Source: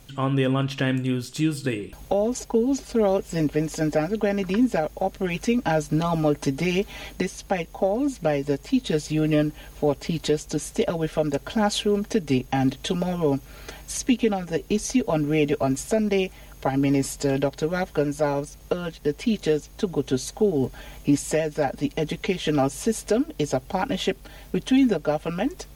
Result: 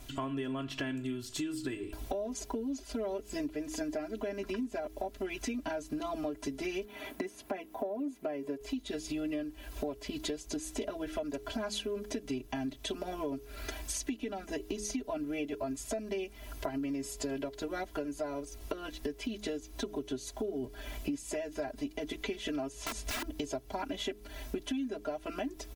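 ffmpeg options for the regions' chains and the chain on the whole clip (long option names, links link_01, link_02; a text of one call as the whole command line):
ffmpeg -i in.wav -filter_complex "[0:a]asettb=1/sr,asplit=3[link_01][link_02][link_03];[link_01]atrim=end=6.854[link_04];[link_02]atrim=start=6.85:end=8.61,asetpts=PTS-STARTPTS,afade=type=in:duration=0.004:curve=qsin,afade=type=out:start_time=1.756:duration=0.004:curve=qsin,highpass=150,equalizer=frequency=5400:width_type=o:width=1.9:gain=-10.5[link_05];[link_03]atrim=start=8.606[link_06];[link_04][link_05]acrossfade=duration=0.004:curve1=hsin:curve2=qsin[link_07];[link_07][link_06]acrossfade=duration=0.004:curve1=qsin:curve2=hsin,asettb=1/sr,asplit=3[link_08][link_09][link_10];[link_08]atrim=end=22.724[link_11];[link_09]atrim=start=22.72:end=23.34,asetpts=PTS-STARTPTS,afade=type=in:duration=0.004:curve=qsin,afade=type=out:start_time=0.616:duration=0.004:curve=qsin,acrossover=split=6500[link_12][link_13];[link_13]acompressor=threshold=-45dB:ratio=4:attack=1:release=60[link_14];[link_12][link_14]amix=inputs=2:normalize=0,asubboost=boost=9:cutoff=230,aeval=exprs='(mod(14.1*val(0)+1,2)-1)/14.1':channel_layout=same[link_15];[link_10]atrim=start=23.336[link_16];[link_11][link_15]acrossfade=duration=0.004:curve1=hsin:curve2=qsin[link_17];[link_17][link_16]acrossfade=duration=0.004:curve1=qsin:curve2=hsin,aecho=1:1:3:0.94,bandreject=frequency=104.4:width_type=h:width=4,bandreject=frequency=208.8:width_type=h:width=4,bandreject=frequency=313.2:width_type=h:width=4,bandreject=frequency=417.6:width_type=h:width=4,bandreject=frequency=522:width_type=h:width=4,acompressor=threshold=-32dB:ratio=6,volume=-2.5dB" out.wav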